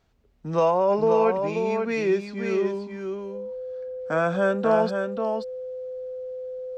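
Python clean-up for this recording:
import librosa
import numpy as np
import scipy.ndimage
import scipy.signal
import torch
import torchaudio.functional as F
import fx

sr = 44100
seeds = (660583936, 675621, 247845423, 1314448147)

y = fx.notch(x, sr, hz=510.0, q=30.0)
y = fx.fix_echo_inverse(y, sr, delay_ms=534, level_db=-5.5)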